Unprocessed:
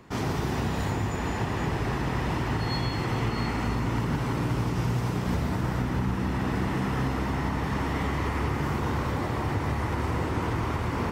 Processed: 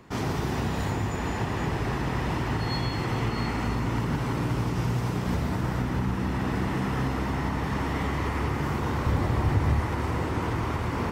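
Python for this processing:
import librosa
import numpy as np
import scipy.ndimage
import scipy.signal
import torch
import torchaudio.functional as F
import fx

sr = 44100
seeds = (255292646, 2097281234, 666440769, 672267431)

y = fx.low_shelf(x, sr, hz=110.0, db=11.0, at=(9.06, 9.8))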